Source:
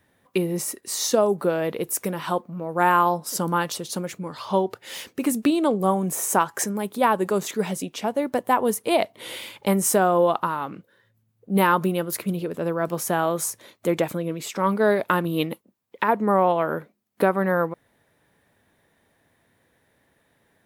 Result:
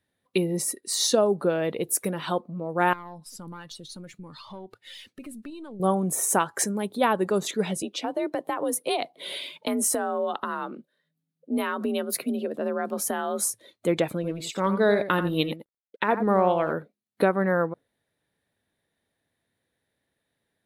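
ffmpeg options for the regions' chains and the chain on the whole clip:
ffmpeg -i in.wav -filter_complex "[0:a]asettb=1/sr,asplit=3[link_01][link_02][link_03];[link_01]atrim=end=2.934[link_04];[link_02]atrim=start=2.93:end=5.8,asetpts=PTS-STARTPTS,afade=type=in:duration=0.004:curve=qsin,afade=type=out:start_time=2.866:duration=0.004:curve=qsin,equalizer=frequency=470:width=0.95:gain=-6.5,acompressor=threshold=-36dB:ratio=3:attack=3.2:release=140:knee=1:detection=peak,aeval=exprs='(tanh(28.2*val(0)+0.5)-tanh(0.5))/28.2':channel_layout=same[link_05];[link_03]atrim=start=5.796[link_06];[link_04][link_05]acrossfade=duration=0.004:curve1=hsin:curve2=qsin[link_07];[link_07][link_06]acrossfade=duration=0.004:curve1=qsin:curve2=hsin,asettb=1/sr,asplit=3[link_08][link_09][link_10];[link_08]atrim=end=7.824[link_11];[link_09]atrim=start=7.82:end=13.49,asetpts=PTS-STARTPTS,afade=type=in:duration=0.004:curve=qsin,afade=type=out:start_time=5.666:duration=0.004:curve=qsin,afreqshift=50,acompressor=threshold=-20dB:ratio=10:attack=3.2:release=140:knee=1:detection=peak[link_12];[link_10]atrim=start=13.486[link_13];[link_11][link_12]acrossfade=duration=0.004:curve1=hsin:curve2=qsin[link_14];[link_14][link_13]acrossfade=duration=0.004:curve1=qsin:curve2=hsin,asettb=1/sr,asplit=3[link_15][link_16][link_17];[link_15]atrim=end=14.154[link_18];[link_16]atrim=start=14.15:end=16.73,asetpts=PTS-STARTPTS,afade=type=in:duration=0.004:curve=qsin,afade=type=out:start_time=2.576:duration=0.004:curve=qsin,aeval=exprs='sgn(val(0))*max(abs(val(0))-0.00355,0)':channel_layout=same,aecho=1:1:87:0.316,atrim=end_sample=113778[link_19];[link_17]atrim=start=16.726[link_20];[link_18][link_19]acrossfade=duration=0.004:curve1=hsin:curve2=qsin[link_21];[link_21][link_20]acrossfade=duration=0.004:curve1=qsin:curve2=hsin,highshelf=frequency=5900:gain=-5.5,afftdn=noise_reduction=13:noise_floor=-44,equalizer=frequency=1000:width_type=o:width=0.67:gain=-4,equalizer=frequency=4000:width_type=o:width=0.67:gain=8,equalizer=frequency=10000:width_type=o:width=0.67:gain=8,volume=-1dB" out.wav

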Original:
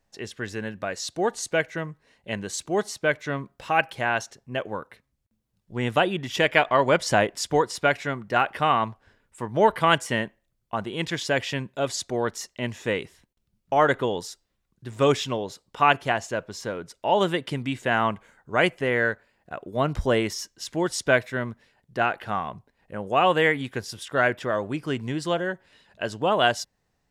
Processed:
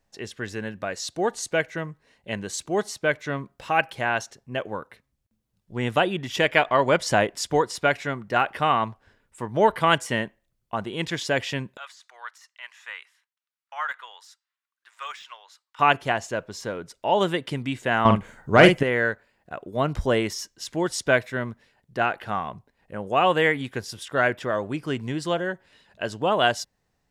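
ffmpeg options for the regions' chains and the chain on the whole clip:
ffmpeg -i in.wav -filter_complex "[0:a]asettb=1/sr,asplit=3[link_01][link_02][link_03];[link_01]atrim=end=11.774[link_04];[link_02]atrim=start=11.77:end=15.79,asetpts=PTS-STARTPTS,afade=type=in:duration=0.004:curve=qsin,afade=type=out:start_time=4.016:duration=0.004:curve=qsin,highpass=frequency=1200:width=0.5412,highpass=frequency=1200:width=1.3066,deesser=0.85,highshelf=frequency=2700:gain=-12[link_05];[link_03]atrim=start=15.786[link_06];[link_04][link_05]acrossfade=duration=0.004:curve1=hsin:curve2=qsin[link_07];[link_07][link_06]acrossfade=duration=0.004:curve1=qsin:curve2=hsin,asettb=1/sr,asplit=3[link_08][link_09][link_10];[link_08]atrim=end=18.054[link_11];[link_09]atrim=start=18.05:end=18.83,asetpts=PTS-STARTPTS,afade=type=in:duration=0.004:curve=qsin,afade=type=out:start_time=0.776:duration=0.004:curve=qsin,lowshelf=frequency=320:gain=7,acontrast=72,asplit=2[link_12][link_13];[link_13]adelay=47,volume=-7dB[link_14];[link_12][link_14]amix=inputs=2:normalize=0,atrim=end_sample=34398[link_15];[link_10]atrim=start=18.826[link_16];[link_11][link_15]acrossfade=duration=0.004:curve1=hsin:curve2=qsin[link_17];[link_17][link_16]acrossfade=duration=0.004:curve1=qsin:curve2=hsin" out.wav

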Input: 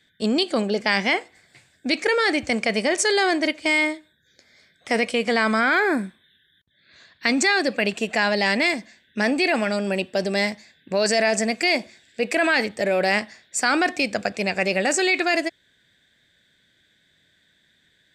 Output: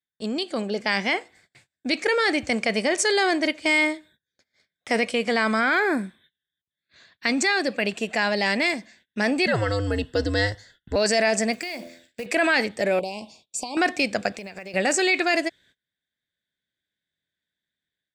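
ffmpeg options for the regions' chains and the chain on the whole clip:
ffmpeg -i in.wav -filter_complex "[0:a]asettb=1/sr,asplit=3[link_01][link_02][link_03];[link_01]atrim=end=9.464[link_04];[link_02]atrim=start=9.46:end=10.96,asetpts=PTS-STARTPTS,afade=type=in:duration=0.004:curve=qsin,afade=type=out:start_time=1.496:duration=0.004:curve=qsin,acrossover=split=7400[link_05][link_06];[link_06]acompressor=threshold=-56dB:ratio=4:attack=1:release=60[link_07];[link_05][link_07]amix=inputs=2:normalize=0,asuperstop=centerf=2500:order=4:qfactor=4.2,afreqshift=-110[link_08];[link_03]atrim=start=10.956[link_09];[link_04][link_08]acrossfade=duration=0.004:curve1=hsin:curve2=qsin[link_10];[link_10][link_09]acrossfade=duration=0.004:curve1=qsin:curve2=hsin,asettb=1/sr,asplit=3[link_11][link_12][link_13];[link_11]atrim=end=11.534[link_14];[link_12]atrim=start=11.53:end=12.26,asetpts=PTS-STARTPTS,afade=type=in:duration=0.004:curve=qsin,afade=type=out:start_time=0.726:duration=0.004:curve=qsin,bandreject=frequency=84.73:width_type=h:width=4,bandreject=frequency=169.46:width_type=h:width=4,bandreject=frequency=254.19:width_type=h:width=4,bandreject=frequency=338.92:width_type=h:width=4,bandreject=frequency=423.65:width_type=h:width=4,bandreject=frequency=508.38:width_type=h:width=4,bandreject=frequency=593.11:width_type=h:width=4,bandreject=frequency=677.84:width_type=h:width=4,acompressor=threshold=-27dB:ratio=8:attack=3.2:release=140:knee=1:detection=peak,acrusher=bits=4:mode=log:mix=0:aa=0.000001[link_15];[link_13]atrim=start=12.256[link_16];[link_14][link_15]acrossfade=duration=0.004:curve1=hsin:curve2=qsin[link_17];[link_17][link_16]acrossfade=duration=0.004:curve1=qsin:curve2=hsin,asettb=1/sr,asplit=3[link_18][link_19][link_20];[link_18]atrim=end=12.994[link_21];[link_19]atrim=start=12.99:end=13.77,asetpts=PTS-STARTPTS,afade=type=in:duration=0.004:curve=qsin,afade=type=out:start_time=0.776:duration=0.004:curve=qsin,acompressor=threshold=-24dB:ratio=10:attack=3.2:release=140:knee=1:detection=peak,asuperstop=centerf=1600:order=12:qfactor=1.2[link_22];[link_20]atrim=start=13.766[link_23];[link_21][link_22]acrossfade=duration=0.004:curve1=hsin:curve2=qsin[link_24];[link_24][link_23]acrossfade=duration=0.004:curve1=qsin:curve2=hsin,asettb=1/sr,asplit=3[link_25][link_26][link_27];[link_25]atrim=end=14.334[link_28];[link_26]atrim=start=14.33:end=14.74,asetpts=PTS-STARTPTS,afade=type=in:duration=0.004:curve=qsin,afade=type=out:start_time=0.406:duration=0.004:curve=qsin,acompressor=threshold=-32dB:ratio=16:attack=3.2:release=140:knee=1:detection=peak,acrusher=bits=8:mode=log:mix=0:aa=0.000001[link_29];[link_27]atrim=start=14.736[link_30];[link_28][link_29]acrossfade=duration=0.004:curve1=hsin:curve2=qsin[link_31];[link_31][link_30]acrossfade=duration=0.004:curve1=qsin:curve2=hsin,agate=range=-26dB:threshold=-53dB:ratio=16:detection=peak,dynaudnorm=framelen=440:gausssize=3:maxgain=9dB,volume=-7dB" out.wav

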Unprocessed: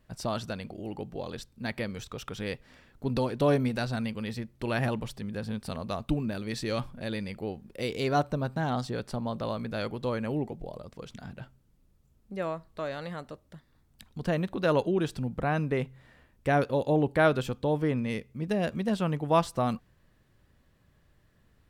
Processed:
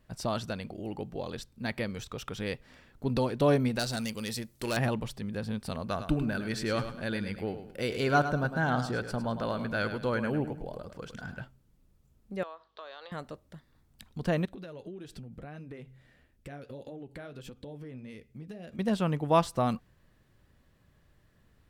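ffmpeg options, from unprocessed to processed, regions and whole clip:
ffmpeg -i in.wav -filter_complex "[0:a]asettb=1/sr,asplit=3[link_01][link_02][link_03];[link_01]atrim=end=3.794[link_04];[link_02]atrim=start=3.79:end=4.77,asetpts=PTS-STARTPTS,afade=type=in:duration=0.004:curve=qsin,afade=type=out:start_time=0.976:duration=0.004:curve=qsin,asoftclip=type=hard:threshold=-25.5dB,bass=frequency=250:gain=-4,treble=frequency=4000:gain=14[link_05];[link_03]atrim=start=4.766[link_06];[link_04][link_05]acrossfade=duration=0.004:curve1=hsin:curve2=qsin[link_07];[link_07][link_06]acrossfade=duration=0.004:curve1=qsin:curve2=hsin,asettb=1/sr,asplit=3[link_08][link_09][link_10];[link_08]atrim=end=5.854[link_11];[link_09]atrim=start=5.85:end=11.42,asetpts=PTS-STARTPTS,afade=type=in:duration=0.004:curve=qsin,afade=type=out:start_time=5.566:duration=0.004:curve=qsin,equalizer=frequency=1500:width_type=o:width=0.27:gain=10.5,bandreject=frequency=3800:width=16,aecho=1:1:104|208|312|416:0.316|0.104|0.0344|0.0114,atrim=end_sample=245637[link_12];[link_10]atrim=start=11.416[link_13];[link_11][link_12]acrossfade=duration=0.004:curve1=hsin:curve2=qsin[link_14];[link_14][link_13]acrossfade=duration=0.004:curve1=qsin:curve2=hsin,asettb=1/sr,asplit=3[link_15][link_16][link_17];[link_15]atrim=end=12.434[link_18];[link_16]atrim=start=12.43:end=13.12,asetpts=PTS-STARTPTS,afade=type=in:duration=0.004:curve=qsin,afade=type=out:start_time=0.686:duration=0.004:curve=qsin,highpass=frequency=440:width=0.5412,highpass=frequency=440:width=1.3066,equalizer=frequency=590:width_type=q:width=4:gain=-5,equalizer=frequency=1100:width_type=q:width=4:gain=4,equalizer=frequency=2100:width_type=q:width=4:gain=-6,equalizer=frequency=3400:width_type=q:width=4:gain=8,lowpass=frequency=5100:width=0.5412,lowpass=frequency=5100:width=1.3066,acompressor=threshold=-43dB:ratio=3:attack=3.2:release=140:knee=1:detection=peak,aeval=exprs='val(0)+0.000112*(sin(2*PI*50*n/s)+sin(2*PI*2*50*n/s)/2+sin(2*PI*3*50*n/s)/3+sin(2*PI*4*50*n/s)/4+sin(2*PI*5*50*n/s)/5)':channel_layout=same[link_19];[link_17]atrim=start=13.116[link_20];[link_18][link_19]acrossfade=duration=0.004:curve1=hsin:curve2=qsin[link_21];[link_21][link_20]acrossfade=duration=0.004:curve1=qsin:curve2=hsin,asettb=1/sr,asplit=3[link_22][link_23][link_24];[link_22]atrim=end=14.454[link_25];[link_23]atrim=start=14.45:end=18.79,asetpts=PTS-STARTPTS,afade=type=in:duration=0.004:curve=qsin,afade=type=out:start_time=4.336:duration=0.004:curve=qsin,equalizer=frequency=1000:width_type=o:width=0.71:gain=-8,acompressor=threshold=-35dB:ratio=16:attack=3.2:release=140:knee=1:detection=peak,flanger=delay=2.3:depth=6.8:regen=-54:speed=1.6:shape=triangular[link_26];[link_24]atrim=start=18.786[link_27];[link_25][link_26]acrossfade=duration=0.004:curve1=hsin:curve2=qsin[link_28];[link_28][link_27]acrossfade=duration=0.004:curve1=qsin:curve2=hsin" out.wav

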